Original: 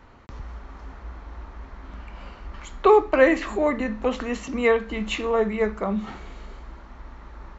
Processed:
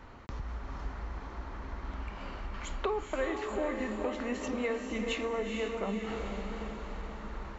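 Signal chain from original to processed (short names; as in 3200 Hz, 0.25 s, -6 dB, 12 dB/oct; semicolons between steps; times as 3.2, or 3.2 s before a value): compressor 4:1, threshold -34 dBFS, peak gain reduction 19 dB; on a send: diffused feedback echo 0.454 s, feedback 53%, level -4.5 dB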